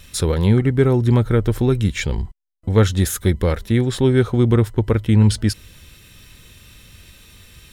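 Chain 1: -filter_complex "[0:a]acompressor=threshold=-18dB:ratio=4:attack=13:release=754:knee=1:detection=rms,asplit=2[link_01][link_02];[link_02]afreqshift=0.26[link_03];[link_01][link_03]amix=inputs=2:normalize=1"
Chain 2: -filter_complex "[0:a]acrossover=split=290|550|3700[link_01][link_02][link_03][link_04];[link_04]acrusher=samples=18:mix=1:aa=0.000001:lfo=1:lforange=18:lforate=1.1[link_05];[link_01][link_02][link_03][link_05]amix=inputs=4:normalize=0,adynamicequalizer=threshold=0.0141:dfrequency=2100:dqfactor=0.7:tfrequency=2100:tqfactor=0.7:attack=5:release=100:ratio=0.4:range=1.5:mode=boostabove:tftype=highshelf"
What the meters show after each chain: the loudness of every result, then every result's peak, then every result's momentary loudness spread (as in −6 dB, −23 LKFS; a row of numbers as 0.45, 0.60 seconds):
−27.5, −18.0 LKFS; −13.0, −1.5 dBFS; 10, 9 LU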